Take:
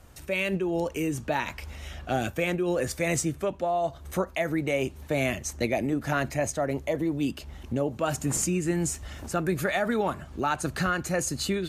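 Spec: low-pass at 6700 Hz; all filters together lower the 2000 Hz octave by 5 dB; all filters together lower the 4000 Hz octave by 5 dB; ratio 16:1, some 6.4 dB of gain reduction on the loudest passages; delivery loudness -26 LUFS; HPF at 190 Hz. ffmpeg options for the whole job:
-af "highpass=190,lowpass=6.7k,equalizer=f=2k:t=o:g=-5.5,equalizer=f=4k:t=o:g=-4,acompressor=threshold=-29dB:ratio=16,volume=9dB"

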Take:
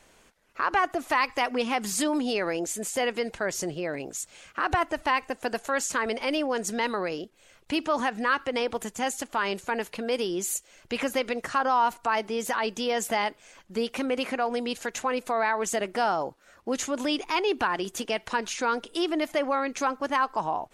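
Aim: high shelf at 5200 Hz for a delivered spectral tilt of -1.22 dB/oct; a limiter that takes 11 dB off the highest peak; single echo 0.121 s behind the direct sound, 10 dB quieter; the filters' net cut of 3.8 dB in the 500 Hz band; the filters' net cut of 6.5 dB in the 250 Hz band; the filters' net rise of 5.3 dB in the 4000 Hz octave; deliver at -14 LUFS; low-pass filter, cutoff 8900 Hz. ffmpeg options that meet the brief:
-af "lowpass=8.9k,equalizer=f=250:t=o:g=-7,equalizer=f=500:t=o:g=-3,equalizer=f=4k:t=o:g=6.5,highshelf=f=5.2k:g=3,alimiter=limit=-20.5dB:level=0:latency=1,aecho=1:1:121:0.316,volume=17.5dB"

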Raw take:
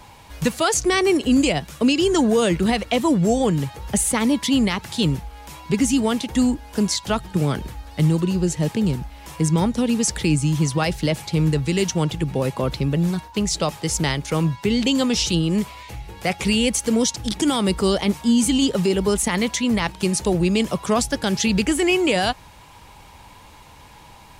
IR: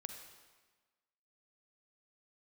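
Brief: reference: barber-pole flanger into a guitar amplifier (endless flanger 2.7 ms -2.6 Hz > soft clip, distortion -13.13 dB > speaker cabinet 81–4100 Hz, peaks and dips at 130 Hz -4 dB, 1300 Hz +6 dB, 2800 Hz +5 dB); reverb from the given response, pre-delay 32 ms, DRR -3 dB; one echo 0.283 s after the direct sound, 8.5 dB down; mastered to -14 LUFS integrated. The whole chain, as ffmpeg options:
-filter_complex "[0:a]aecho=1:1:283:0.376,asplit=2[a][b];[1:a]atrim=start_sample=2205,adelay=32[c];[b][c]afir=irnorm=-1:irlink=0,volume=6dB[d];[a][d]amix=inputs=2:normalize=0,asplit=2[e][f];[f]adelay=2.7,afreqshift=-2.6[g];[e][g]amix=inputs=2:normalize=1,asoftclip=threshold=-13.5dB,highpass=81,equalizer=f=130:t=q:w=4:g=-4,equalizer=f=1.3k:t=q:w=4:g=6,equalizer=f=2.8k:t=q:w=4:g=5,lowpass=f=4.1k:w=0.5412,lowpass=f=4.1k:w=1.3066,volume=7dB"

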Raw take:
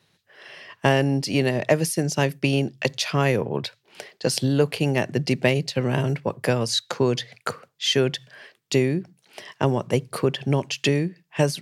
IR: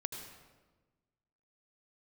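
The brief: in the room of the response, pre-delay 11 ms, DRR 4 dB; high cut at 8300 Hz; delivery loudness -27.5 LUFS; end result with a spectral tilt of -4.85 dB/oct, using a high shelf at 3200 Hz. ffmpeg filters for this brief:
-filter_complex "[0:a]lowpass=8.3k,highshelf=f=3.2k:g=-3.5,asplit=2[a][b];[1:a]atrim=start_sample=2205,adelay=11[c];[b][c]afir=irnorm=-1:irlink=0,volume=-4dB[d];[a][d]amix=inputs=2:normalize=0,volume=-4.5dB"

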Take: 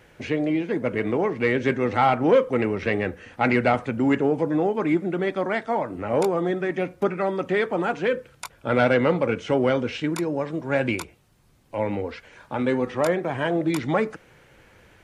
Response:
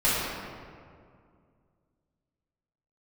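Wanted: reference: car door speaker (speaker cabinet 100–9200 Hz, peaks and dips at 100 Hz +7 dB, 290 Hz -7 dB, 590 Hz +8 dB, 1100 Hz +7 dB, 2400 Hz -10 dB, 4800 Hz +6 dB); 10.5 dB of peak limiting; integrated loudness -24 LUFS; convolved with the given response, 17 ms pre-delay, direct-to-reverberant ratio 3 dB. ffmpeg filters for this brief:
-filter_complex "[0:a]alimiter=limit=-17.5dB:level=0:latency=1,asplit=2[a][b];[1:a]atrim=start_sample=2205,adelay=17[c];[b][c]afir=irnorm=-1:irlink=0,volume=-18.5dB[d];[a][d]amix=inputs=2:normalize=0,highpass=100,equalizer=f=100:t=q:w=4:g=7,equalizer=f=290:t=q:w=4:g=-7,equalizer=f=590:t=q:w=4:g=8,equalizer=f=1.1k:t=q:w=4:g=7,equalizer=f=2.4k:t=q:w=4:g=-10,equalizer=f=4.8k:t=q:w=4:g=6,lowpass=f=9.2k:w=0.5412,lowpass=f=9.2k:w=1.3066,volume=0.5dB"

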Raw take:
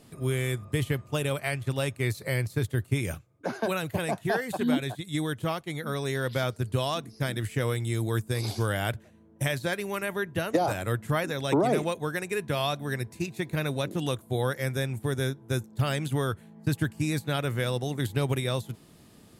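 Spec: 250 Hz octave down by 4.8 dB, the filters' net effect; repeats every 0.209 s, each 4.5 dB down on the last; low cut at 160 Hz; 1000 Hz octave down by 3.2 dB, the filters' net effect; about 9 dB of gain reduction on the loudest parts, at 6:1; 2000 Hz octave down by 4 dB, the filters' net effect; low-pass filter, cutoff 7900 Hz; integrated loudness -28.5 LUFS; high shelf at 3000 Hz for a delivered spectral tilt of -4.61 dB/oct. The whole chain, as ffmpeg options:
-af "highpass=160,lowpass=7.9k,equalizer=f=250:t=o:g=-5,equalizer=f=1k:t=o:g=-3.5,equalizer=f=2k:t=o:g=-5.5,highshelf=f=3k:g=4.5,acompressor=threshold=-33dB:ratio=6,aecho=1:1:209|418|627|836|1045|1254|1463|1672|1881:0.596|0.357|0.214|0.129|0.0772|0.0463|0.0278|0.0167|0.01,volume=8dB"

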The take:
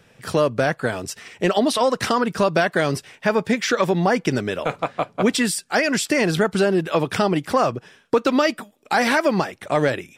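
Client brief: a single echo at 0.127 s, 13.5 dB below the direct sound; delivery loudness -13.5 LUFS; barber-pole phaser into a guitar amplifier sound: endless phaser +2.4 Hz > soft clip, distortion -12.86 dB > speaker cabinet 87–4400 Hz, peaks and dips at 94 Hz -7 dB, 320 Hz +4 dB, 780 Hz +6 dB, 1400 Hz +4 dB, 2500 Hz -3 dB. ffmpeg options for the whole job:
-filter_complex "[0:a]aecho=1:1:127:0.211,asplit=2[a][b];[b]afreqshift=2.4[c];[a][c]amix=inputs=2:normalize=1,asoftclip=threshold=-18.5dB,highpass=87,equalizer=f=94:t=q:w=4:g=-7,equalizer=f=320:t=q:w=4:g=4,equalizer=f=780:t=q:w=4:g=6,equalizer=f=1.4k:t=q:w=4:g=4,equalizer=f=2.5k:t=q:w=4:g=-3,lowpass=f=4.4k:w=0.5412,lowpass=f=4.4k:w=1.3066,volume=11.5dB"

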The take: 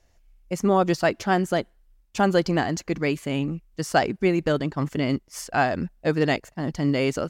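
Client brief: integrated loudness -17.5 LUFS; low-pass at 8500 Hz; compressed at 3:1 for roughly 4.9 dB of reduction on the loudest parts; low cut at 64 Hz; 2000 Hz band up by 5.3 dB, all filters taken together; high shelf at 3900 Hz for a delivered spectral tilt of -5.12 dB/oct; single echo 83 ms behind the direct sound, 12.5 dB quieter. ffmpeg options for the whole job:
-af "highpass=64,lowpass=8.5k,equalizer=f=2k:t=o:g=6,highshelf=f=3.9k:g=3.5,acompressor=threshold=-20dB:ratio=3,aecho=1:1:83:0.237,volume=8.5dB"

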